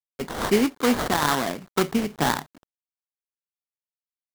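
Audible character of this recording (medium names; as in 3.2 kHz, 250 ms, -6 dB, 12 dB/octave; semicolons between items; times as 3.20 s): a quantiser's noise floor 8-bit, dither none; tremolo triangle 2.3 Hz, depth 60%; aliases and images of a low sample rate 2.6 kHz, jitter 20%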